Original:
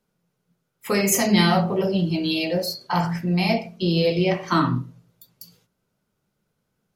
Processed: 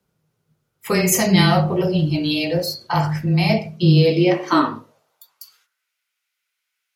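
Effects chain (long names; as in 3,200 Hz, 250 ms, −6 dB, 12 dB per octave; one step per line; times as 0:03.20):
high-pass filter sweep 62 Hz → 2,200 Hz, 0:03.16–0:05.92
frequency shifter −17 Hz
level +2.5 dB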